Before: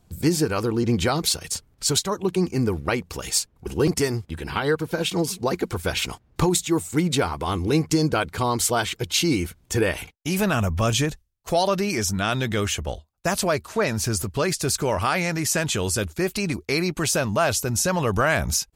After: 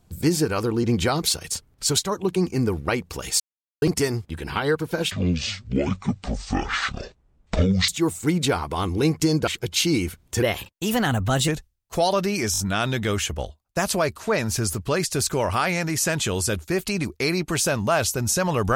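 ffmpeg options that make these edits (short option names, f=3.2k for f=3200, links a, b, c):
-filter_complex "[0:a]asplit=11[a][b][c][d][e][f][g][h][i][j][k];[a]atrim=end=3.4,asetpts=PTS-STARTPTS,afade=t=out:st=3.396:d=0.004:c=hsin[l];[b]atrim=start=3.4:end=3.82,asetpts=PTS-STARTPTS,volume=0[m];[c]atrim=start=3.82:end=5.114,asetpts=PTS-STARTPTS,afade=t=in:d=0.004:c=hsin[n];[d]atrim=start=5.11:end=6.58,asetpts=PTS-STARTPTS,asetrate=23373,aresample=44100,atrim=end_sample=122315,asetpts=PTS-STARTPTS[o];[e]atrim=start=6.576:end=8.172[p];[f]atrim=start=8.848:end=9.804[q];[g]atrim=start=9.8:end=11.03,asetpts=PTS-STARTPTS,asetrate=51156,aresample=44100,atrim=end_sample=46761,asetpts=PTS-STARTPTS[r];[h]atrim=start=11.026:end=12.092[s];[i]atrim=start=12.068:end=12.092[t];[j]atrim=start=12.068:end=12.092[u];[k]atrim=start=12.068[v];[l][m][n]concat=n=3:v=0:a=1[w];[w][o]acrossfade=d=0.004:c1=hsin:c2=hsin[x];[x][p]acrossfade=d=0.004:c1=hsin:c2=hsin[y];[y][q]acrossfade=d=0.004:c1=hsin:c2=hsin[z];[z][r]acrossfade=d=0.004:c1=hsin:c2=hsin[aa];[aa][s]acrossfade=d=0.004:c1=hsin:c2=hsin[ab];[ab][t]acrossfade=d=0.004:c1=hsin:c2=hsin[ac];[ac][u]acrossfade=d=0.004:c1=hsin:c2=hsin[ad];[ad][v]acrossfade=d=0.004:c1=hsin:c2=hsin"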